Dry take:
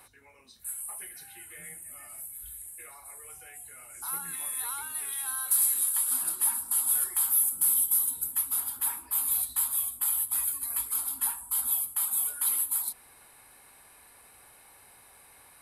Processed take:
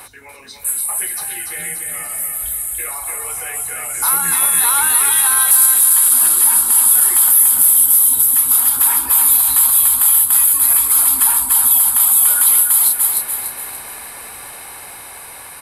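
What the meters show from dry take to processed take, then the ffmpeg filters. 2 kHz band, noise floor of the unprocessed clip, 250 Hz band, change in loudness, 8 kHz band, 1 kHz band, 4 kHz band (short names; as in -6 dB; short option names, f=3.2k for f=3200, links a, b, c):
+20.0 dB, -56 dBFS, n/a, +16.5 dB, +17.0 dB, +19.0 dB, +18.0 dB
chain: -af "acompressor=threshold=-33dB:ratio=2,lowshelf=f=330:g=-4,aecho=1:1:290|580|870|1160|1450:0.531|0.239|0.108|0.0484|0.0218,dynaudnorm=f=840:g=9:m=5.5dB,alimiter=level_in=19dB:limit=-1dB:release=50:level=0:latency=1,volume=-1dB"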